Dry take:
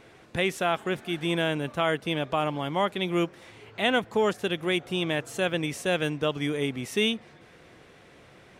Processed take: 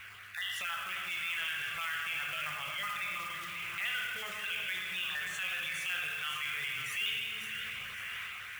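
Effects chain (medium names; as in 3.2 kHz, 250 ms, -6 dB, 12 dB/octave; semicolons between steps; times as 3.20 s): random holes in the spectrogram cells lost 34%; level rider gain up to 6 dB; high-order bell 1.9 kHz +15 dB; on a send at -2 dB: high-pass 59 Hz 12 dB/octave + reverberation RT60 1.1 s, pre-delay 9 ms; on the sum: compression 4:1, threshold -30 dBFS, peak gain reduction 22 dB; mains buzz 100 Hz, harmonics 4, -52 dBFS -2 dB/octave; in parallel at -3 dB: peak limiter -25.5 dBFS, peak gain reduction 11 dB; on the sum: short-mantissa float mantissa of 2-bit; amplifier tone stack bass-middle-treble 10-0-10; two-band feedback delay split 1 kHz, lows 347 ms, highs 541 ms, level -9 dB; transient shaper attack -5 dB, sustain +5 dB; trim -5 dB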